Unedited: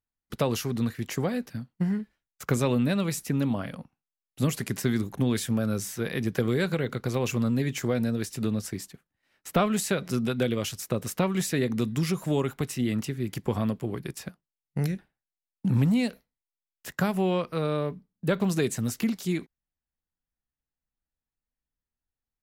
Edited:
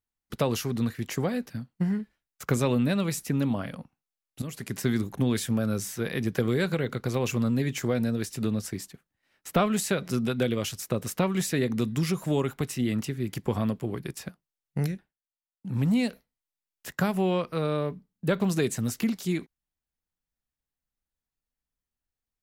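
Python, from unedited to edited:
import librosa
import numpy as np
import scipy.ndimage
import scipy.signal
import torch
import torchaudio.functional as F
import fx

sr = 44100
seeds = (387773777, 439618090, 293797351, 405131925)

y = fx.edit(x, sr, fx.fade_in_from(start_s=4.42, length_s=0.46, floor_db=-15.0),
    fx.fade_down_up(start_s=14.83, length_s=1.1, db=-16.0, fade_s=0.3), tone=tone)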